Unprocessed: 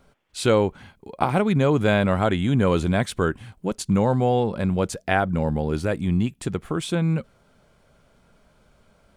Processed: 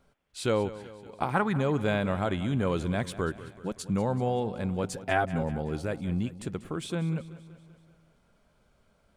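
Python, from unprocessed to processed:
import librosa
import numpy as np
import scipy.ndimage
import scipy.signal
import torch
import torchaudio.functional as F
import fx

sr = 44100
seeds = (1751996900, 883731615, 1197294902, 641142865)

p1 = fx.spec_box(x, sr, start_s=1.34, length_s=0.24, low_hz=780.0, high_hz=2000.0, gain_db=10)
p2 = fx.comb(p1, sr, ms=7.5, depth=0.87, at=(4.83, 5.42))
p3 = p2 + fx.echo_feedback(p2, sr, ms=190, feedback_pct=56, wet_db=-16, dry=0)
y = F.gain(torch.from_numpy(p3), -8.0).numpy()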